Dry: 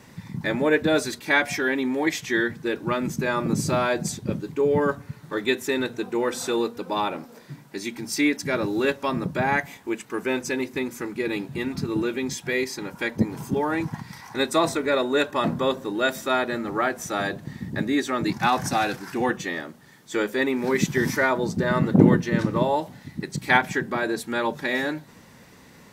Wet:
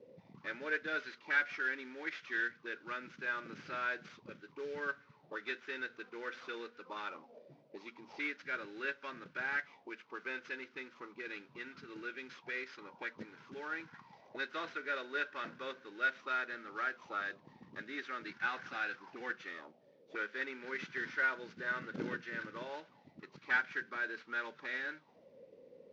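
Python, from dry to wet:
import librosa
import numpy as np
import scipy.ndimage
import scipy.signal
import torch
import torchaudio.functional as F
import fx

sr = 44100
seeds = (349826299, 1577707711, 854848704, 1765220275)

y = fx.cvsd(x, sr, bps=32000)
y = fx.band_shelf(y, sr, hz=1100.0, db=-11.0, octaves=1.7)
y = fx.auto_wah(y, sr, base_hz=470.0, top_hz=1500.0, q=7.6, full_db=-26.0, direction='up')
y = F.gain(torch.from_numpy(y), 7.0).numpy()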